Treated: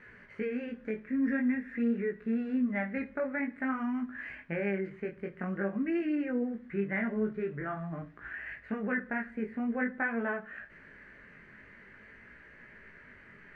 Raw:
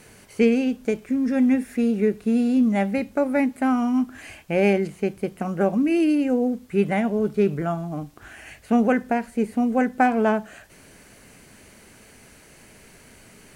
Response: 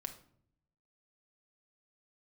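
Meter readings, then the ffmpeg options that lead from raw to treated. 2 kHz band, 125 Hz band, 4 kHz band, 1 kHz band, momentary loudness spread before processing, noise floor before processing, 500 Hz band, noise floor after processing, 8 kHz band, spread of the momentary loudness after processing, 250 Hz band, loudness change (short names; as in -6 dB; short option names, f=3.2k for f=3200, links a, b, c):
-4.0 dB, -11.0 dB, under -15 dB, -15.0 dB, 8 LU, -51 dBFS, -12.5 dB, -55 dBFS, n/a, 22 LU, -11.5 dB, -11.5 dB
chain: -filter_complex "[0:a]equalizer=f=750:t=o:w=0.35:g=-7.5,alimiter=limit=-17.5dB:level=0:latency=1:release=403,lowpass=f=1.8k:t=q:w=5.2,flanger=delay=16.5:depth=6.4:speed=0.48,asplit=2[a][b];[1:a]atrim=start_sample=2205[c];[b][c]afir=irnorm=-1:irlink=0,volume=-2dB[d];[a][d]amix=inputs=2:normalize=0,volume=-9dB"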